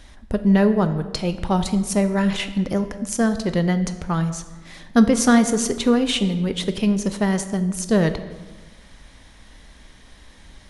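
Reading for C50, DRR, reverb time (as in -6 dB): 11.5 dB, 9.5 dB, 1.3 s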